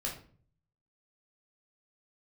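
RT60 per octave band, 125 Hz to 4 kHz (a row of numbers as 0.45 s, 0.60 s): 0.90 s, 0.65 s, 0.50 s, 0.40 s, 0.40 s, 0.30 s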